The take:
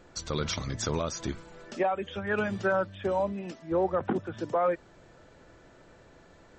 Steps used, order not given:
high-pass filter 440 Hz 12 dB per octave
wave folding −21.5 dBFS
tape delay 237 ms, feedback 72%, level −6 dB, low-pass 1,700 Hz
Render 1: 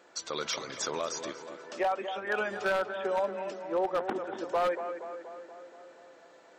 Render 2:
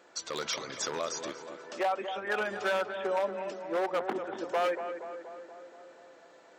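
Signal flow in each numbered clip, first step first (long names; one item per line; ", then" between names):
tape delay, then high-pass filter, then wave folding
wave folding, then tape delay, then high-pass filter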